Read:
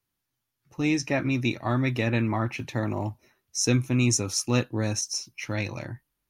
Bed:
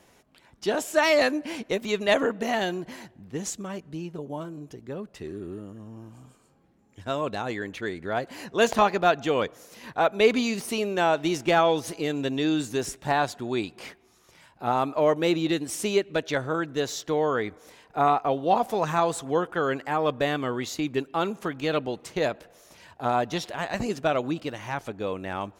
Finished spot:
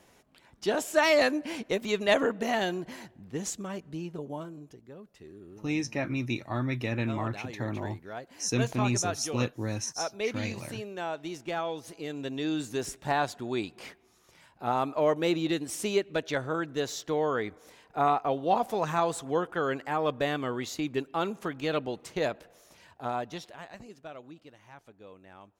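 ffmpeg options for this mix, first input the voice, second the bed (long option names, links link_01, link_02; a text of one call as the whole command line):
ffmpeg -i stem1.wav -i stem2.wav -filter_complex "[0:a]adelay=4850,volume=-5.5dB[link_01];[1:a]volume=6.5dB,afade=type=out:start_time=4.22:duration=0.69:silence=0.316228,afade=type=in:start_time=11.79:duration=1.17:silence=0.375837,afade=type=out:start_time=22.51:duration=1.33:silence=0.158489[link_02];[link_01][link_02]amix=inputs=2:normalize=0" out.wav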